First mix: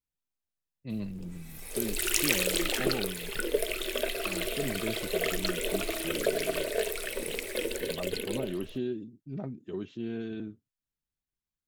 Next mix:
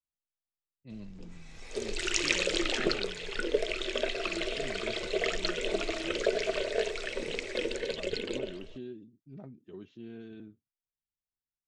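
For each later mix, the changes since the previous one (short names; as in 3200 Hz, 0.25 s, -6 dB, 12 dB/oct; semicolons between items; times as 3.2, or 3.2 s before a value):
speech -9.5 dB; master: add steep low-pass 7000 Hz 36 dB/oct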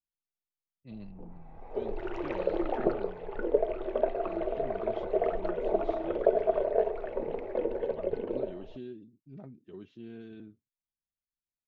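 background: add synth low-pass 820 Hz, resonance Q 3.5; master: add air absorption 52 m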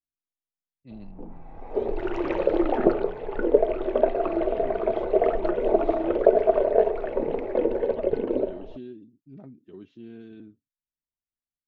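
background +6.5 dB; master: add bell 280 Hz +5.5 dB 0.51 oct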